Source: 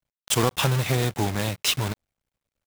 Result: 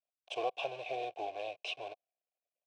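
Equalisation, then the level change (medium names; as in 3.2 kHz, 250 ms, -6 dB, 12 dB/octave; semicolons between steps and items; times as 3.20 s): vowel filter a; cabinet simulation 190–7100 Hz, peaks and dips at 200 Hz -7 dB, 800 Hz -4 dB, 4.8 kHz -5 dB, 7 kHz -9 dB; static phaser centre 520 Hz, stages 4; +4.0 dB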